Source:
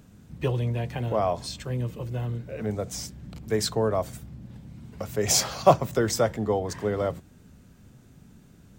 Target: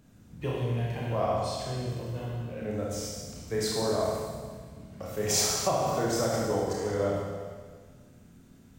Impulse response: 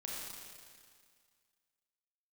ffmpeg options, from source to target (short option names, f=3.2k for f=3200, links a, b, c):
-filter_complex "[1:a]atrim=start_sample=2205,asetrate=52920,aresample=44100[a];[0:a][a]afir=irnorm=-1:irlink=0,asettb=1/sr,asplit=3[b][c][d];[b]atrim=end=5.504[e];[c]atrim=start=5.5:end=6.34,asetpts=PTS-STARTPTS,afade=t=in:d=0.004:c=qsin,afade=t=out:st=0.836:d=0.004:c=qsin,acompressor=threshold=-23dB:ratio=6[f];[d]atrim=start=6.336[g];[e][f]acrossfade=d=0.004:c1=hsin:c2=qsin[h];[h][g]acrossfade=d=0.004:c1=qsin:c2=hsin"